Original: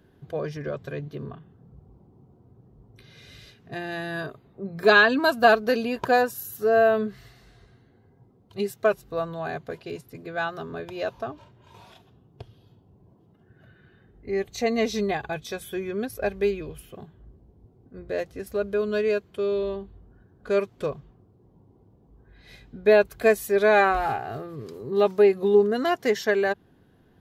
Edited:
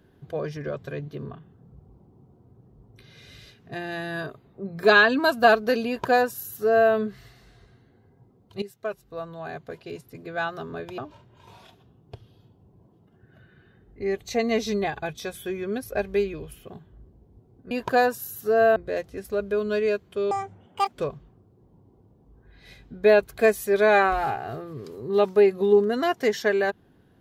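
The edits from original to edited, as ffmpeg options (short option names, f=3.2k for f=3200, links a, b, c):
-filter_complex "[0:a]asplit=7[a][b][c][d][e][f][g];[a]atrim=end=8.62,asetpts=PTS-STARTPTS,afade=t=out:st=8.616:d=0.004:c=hsin:silence=0.223872[h];[b]atrim=start=8.62:end=10.982,asetpts=PTS-STARTPTS,afade=t=in:d=1.73:silence=0.223872[i];[c]atrim=start=11.248:end=17.982[j];[d]atrim=start=5.868:end=6.922[k];[e]atrim=start=17.978:end=19.534[l];[f]atrim=start=19.53:end=20.74,asetpts=PTS-STARTPTS,asetrate=87759,aresample=44100[m];[g]atrim=start=20.736[n];[h][i]concat=n=2:v=0:a=1[o];[o][j]acrossfade=d=0.004:c1=hsin:c2=hsin[p];[p][k]acrossfade=d=0.004:c1=hsin:c2=hsin[q];[q][l]acrossfade=d=0.004:c1=hsin:c2=hsin[r];[r][m]acrossfade=d=0.004:c1=hsin:c2=hsin[s];[s][n]acrossfade=d=0.004:c1=hsin:c2=hsin"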